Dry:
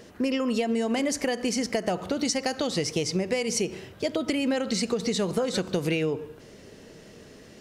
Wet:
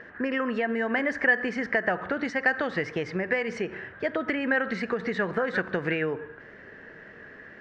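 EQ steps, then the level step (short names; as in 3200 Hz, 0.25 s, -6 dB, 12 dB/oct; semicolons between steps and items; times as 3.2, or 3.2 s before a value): synth low-pass 1700 Hz, resonance Q 7.7; low shelf 390 Hz -5.5 dB; 0.0 dB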